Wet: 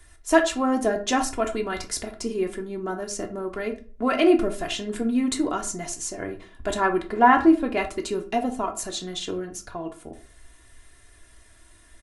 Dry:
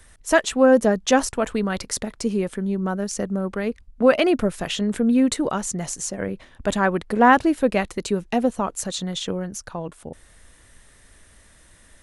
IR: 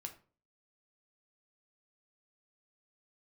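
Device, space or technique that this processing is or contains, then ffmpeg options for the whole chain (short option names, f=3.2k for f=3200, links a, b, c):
microphone above a desk: -filter_complex "[0:a]asettb=1/sr,asplit=3[a][b][c];[a]atrim=end=7.024[d];[b]atrim=start=7.02:end=7.77,asetpts=PTS-STARTPTS,afade=t=in:d=0.004:c=qsin,afade=t=out:st=0.746:d=0.004:c=qsin,acrossover=split=3900[e][f];[f]acompressor=threshold=-53dB:ratio=4:attack=1:release=60[g];[e][g]amix=inputs=2:normalize=0[h];[c]atrim=start=7.766[i];[d][h]acrossfade=d=0.004:c1=hsin:c2=qsin[j];[j][i]acrossfade=d=0.004:c1=qsin:c2=hsin,aecho=1:1:2.9:0.7[k];[1:a]atrim=start_sample=2205[l];[k][l]afir=irnorm=-1:irlink=0"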